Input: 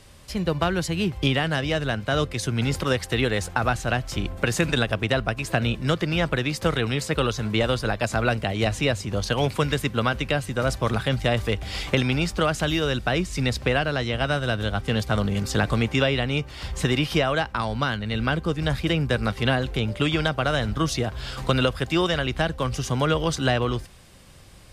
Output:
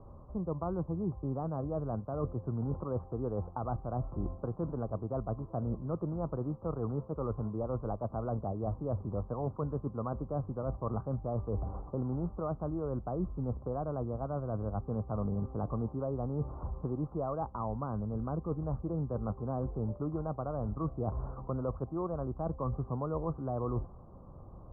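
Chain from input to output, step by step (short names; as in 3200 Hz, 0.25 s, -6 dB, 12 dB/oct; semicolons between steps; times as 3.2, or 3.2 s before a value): reverse; compressor 12:1, threshold -30 dBFS, peak gain reduction 15.5 dB; reverse; steep low-pass 1200 Hz 72 dB/oct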